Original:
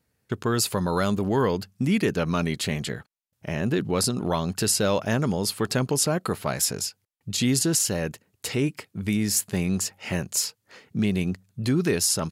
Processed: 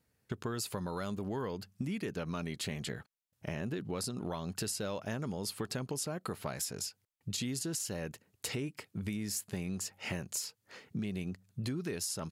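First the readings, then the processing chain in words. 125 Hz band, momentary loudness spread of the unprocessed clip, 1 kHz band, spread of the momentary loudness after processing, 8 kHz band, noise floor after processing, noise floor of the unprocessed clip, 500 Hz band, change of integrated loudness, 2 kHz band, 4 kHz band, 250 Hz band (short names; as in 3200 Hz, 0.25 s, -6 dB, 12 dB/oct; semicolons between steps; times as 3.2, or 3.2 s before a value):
-12.5 dB, 9 LU, -13.5 dB, 6 LU, -13.0 dB, -80 dBFS, -76 dBFS, -13.5 dB, -13.0 dB, -12.0 dB, -12.0 dB, -13.0 dB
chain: compressor 6:1, threshold -31 dBFS, peak gain reduction 12 dB; gain -3.5 dB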